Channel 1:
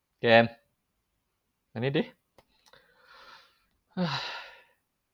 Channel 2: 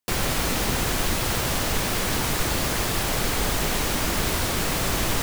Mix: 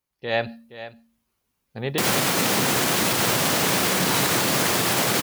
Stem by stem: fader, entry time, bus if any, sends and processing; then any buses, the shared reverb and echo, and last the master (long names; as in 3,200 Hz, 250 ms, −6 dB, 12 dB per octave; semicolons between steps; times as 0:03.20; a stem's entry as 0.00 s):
−6.5 dB, 0.00 s, no send, echo send −19 dB, high-shelf EQ 5,100 Hz +6.5 dB
−1.0 dB, 1.90 s, no send, no echo send, high-pass filter 130 Hz 24 dB per octave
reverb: not used
echo: single-tap delay 471 ms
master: automatic gain control gain up to 8 dB; hum removal 76.66 Hz, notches 4; brickwall limiter −11.5 dBFS, peak gain reduction 5.5 dB